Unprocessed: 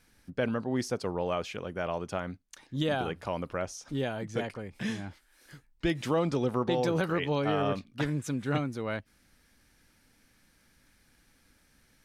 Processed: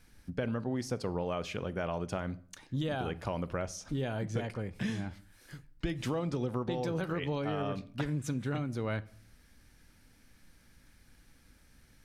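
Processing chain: bass shelf 150 Hz +8 dB; compression, threshold -30 dBFS, peak gain reduction 9 dB; on a send: reverberation RT60 0.50 s, pre-delay 16 ms, DRR 16.5 dB

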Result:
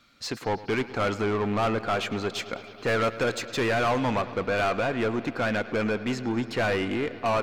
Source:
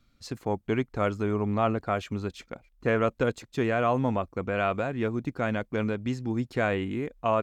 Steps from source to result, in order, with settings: treble shelf 2.4 kHz +4.5 dB, from 2.35 s +10 dB, from 4.21 s +3.5 dB; overdrive pedal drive 26 dB, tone 2.9 kHz, clips at -10.5 dBFS; bucket-brigade echo 107 ms, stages 4096, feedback 82%, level -17.5 dB; trim -6.5 dB

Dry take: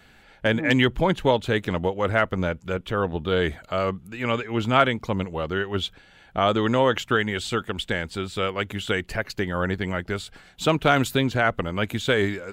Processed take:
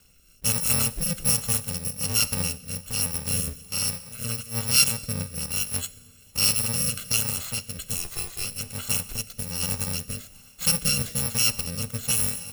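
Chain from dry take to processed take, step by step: bit-reversed sample order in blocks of 128 samples; 7.97–8.45 s: frequency shift -92 Hz; Schroeder reverb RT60 1.7 s, combs from 29 ms, DRR 14.5 dB; rotary cabinet horn 1.2 Hz

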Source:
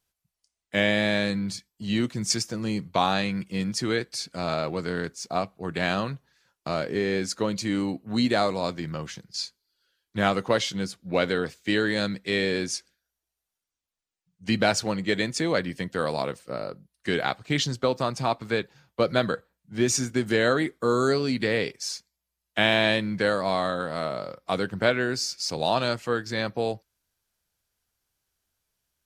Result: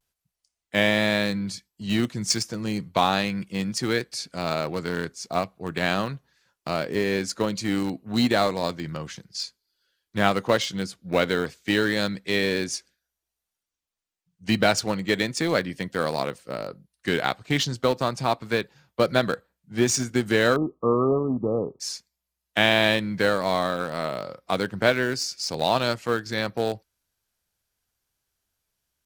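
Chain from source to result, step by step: vibrato 0.33 Hz 24 cents; in parallel at -10.5 dB: small samples zeroed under -20.5 dBFS; 20.56–21.80 s: on the sum: brick-wall FIR low-pass 1.3 kHz

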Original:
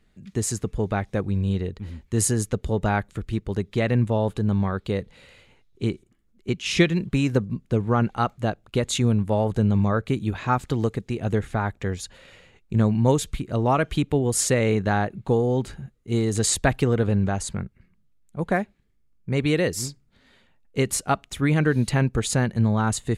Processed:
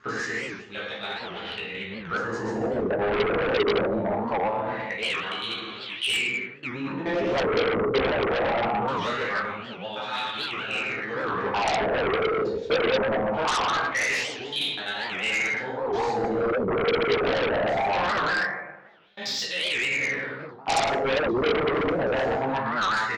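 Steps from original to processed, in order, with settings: slices played last to first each 83 ms, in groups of 8; inverse Chebyshev low-pass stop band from 10 kHz, stop band 40 dB; doubling 15 ms -5.5 dB; plate-style reverb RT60 1.5 s, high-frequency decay 0.5×, DRR -8 dB; reverse; compression 16:1, threshold -22 dBFS, peak gain reduction 18.5 dB; reverse; wah-wah 0.22 Hz 430–3500 Hz, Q 5; in parallel at -11.5 dB: sine folder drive 19 dB, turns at -20.5 dBFS; on the sum: warped record 78 rpm, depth 250 cents; trim +7.5 dB

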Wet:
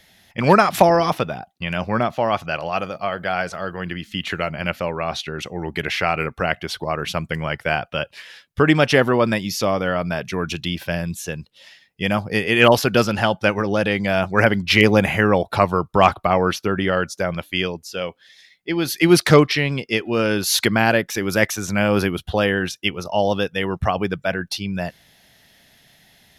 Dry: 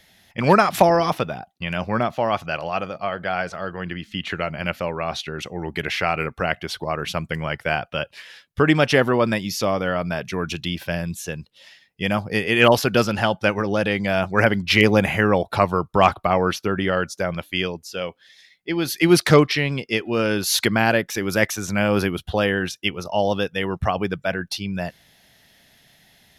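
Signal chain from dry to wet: 2.72–4.49 s: treble shelf 7.6 kHz +9 dB; trim +1.5 dB

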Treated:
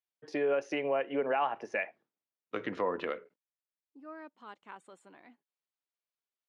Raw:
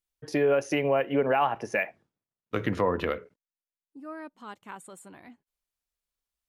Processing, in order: band-pass 270–4500 Hz; trim -5.5 dB

